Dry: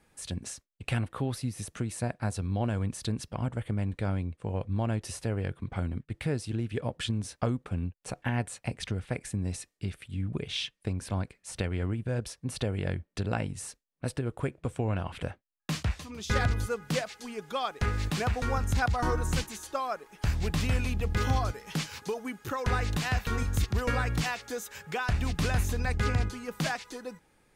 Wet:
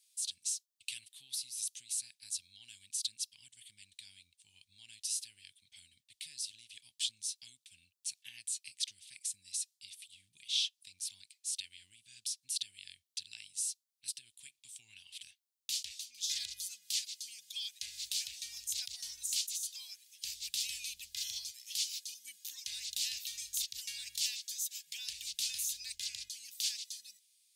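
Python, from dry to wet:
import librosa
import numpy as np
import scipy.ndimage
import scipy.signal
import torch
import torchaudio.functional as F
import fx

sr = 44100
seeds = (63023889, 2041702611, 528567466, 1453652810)

y = scipy.signal.sosfilt(scipy.signal.cheby2(4, 50, 1400.0, 'highpass', fs=sr, output='sos'), x)
y = y * librosa.db_to_amplitude(5.5)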